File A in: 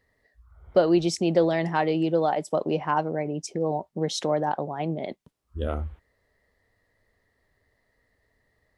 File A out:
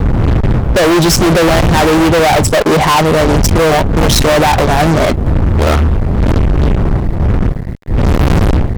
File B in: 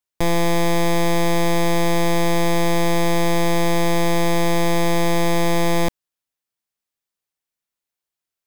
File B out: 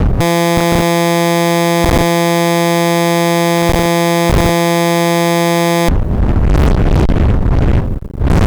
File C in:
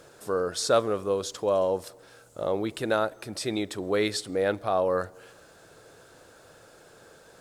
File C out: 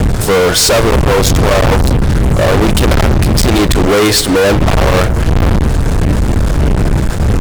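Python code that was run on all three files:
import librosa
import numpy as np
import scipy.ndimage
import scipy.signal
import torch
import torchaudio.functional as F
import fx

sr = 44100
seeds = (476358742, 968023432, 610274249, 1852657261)

y = fx.dmg_wind(x, sr, seeds[0], corner_hz=91.0, level_db=-22.0)
y = fx.fuzz(y, sr, gain_db=41.0, gate_db=-46.0)
y = y * 10.0 ** (5.5 / 20.0)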